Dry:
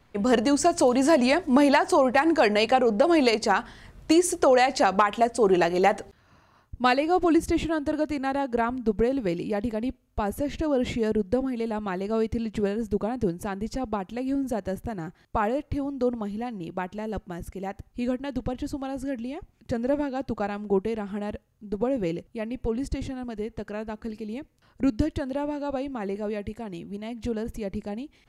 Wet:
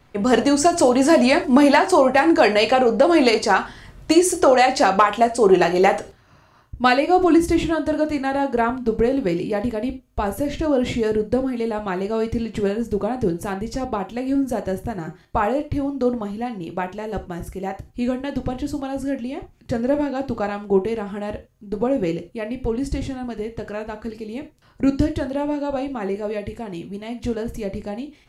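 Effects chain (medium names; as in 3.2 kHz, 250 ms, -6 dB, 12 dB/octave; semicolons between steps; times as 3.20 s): gated-style reverb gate 120 ms falling, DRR 6.5 dB; trim +4.5 dB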